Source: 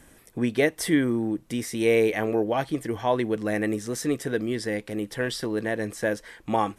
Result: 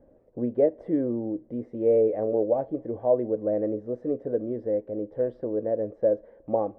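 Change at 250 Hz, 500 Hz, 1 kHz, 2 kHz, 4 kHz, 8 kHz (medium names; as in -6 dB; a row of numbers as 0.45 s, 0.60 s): -3.5 dB, +2.0 dB, -7.5 dB, under -25 dB, under -35 dB, under -40 dB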